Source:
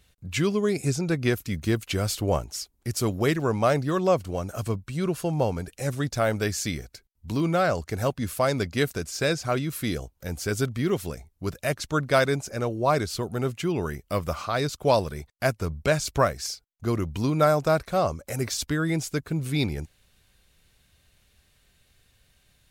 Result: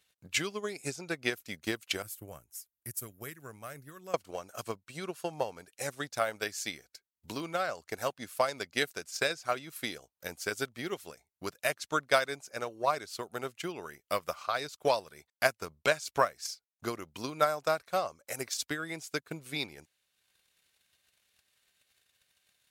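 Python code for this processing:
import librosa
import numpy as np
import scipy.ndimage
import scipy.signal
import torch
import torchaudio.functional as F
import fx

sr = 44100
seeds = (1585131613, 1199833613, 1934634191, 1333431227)

y = fx.curve_eq(x, sr, hz=(130.0, 200.0, 850.0, 1600.0, 4500.0, 12000.0), db=(0, -7, -17, -9, -17, 5), at=(2.02, 4.14))
y = fx.transient(y, sr, attack_db=10, sustain_db=-5)
y = fx.highpass(y, sr, hz=930.0, slope=6)
y = y * librosa.db_to_amplitude(-6.5)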